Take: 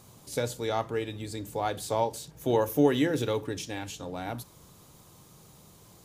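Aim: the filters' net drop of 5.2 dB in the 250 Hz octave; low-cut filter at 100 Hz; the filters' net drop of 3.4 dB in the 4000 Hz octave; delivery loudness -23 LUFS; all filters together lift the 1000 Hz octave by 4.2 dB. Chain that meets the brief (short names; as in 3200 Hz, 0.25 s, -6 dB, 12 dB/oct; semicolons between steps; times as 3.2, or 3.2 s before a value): HPF 100 Hz; bell 250 Hz -7 dB; bell 1000 Hz +6 dB; bell 4000 Hz -4.5 dB; gain +7.5 dB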